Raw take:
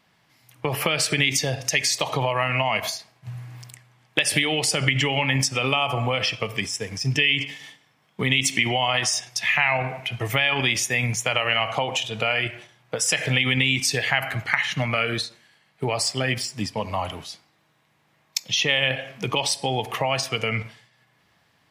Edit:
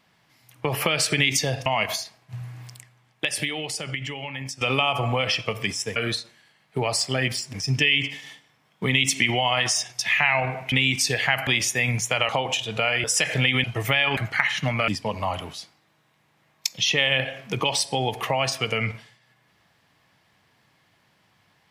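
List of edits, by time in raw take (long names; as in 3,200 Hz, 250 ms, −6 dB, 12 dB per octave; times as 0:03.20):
0:01.66–0:02.60: remove
0:03.53–0:05.55: fade out quadratic, to −12 dB
0:10.09–0:10.62: swap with 0:13.56–0:14.31
0:11.44–0:11.72: remove
0:12.47–0:12.96: remove
0:15.02–0:16.59: move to 0:06.90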